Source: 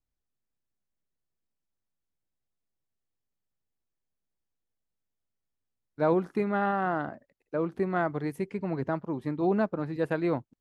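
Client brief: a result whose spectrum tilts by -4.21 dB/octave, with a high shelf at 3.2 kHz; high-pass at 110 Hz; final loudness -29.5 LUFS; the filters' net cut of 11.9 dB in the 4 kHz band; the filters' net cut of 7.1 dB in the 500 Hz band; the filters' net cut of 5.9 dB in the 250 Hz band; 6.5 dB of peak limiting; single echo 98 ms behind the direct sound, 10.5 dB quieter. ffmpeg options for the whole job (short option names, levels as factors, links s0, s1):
-af "highpass=110,equalizer=f=250:t=o:g=-5.5,equalizer=f=500:t=o:g=-7.5,highshelf=f=3200:g=-8.5,equalizer=f=4000:t=o:g=-9,alimiter=limit=0.0631:level=0:latency=1,aecho=1:1:98:0.299,volume=2.24"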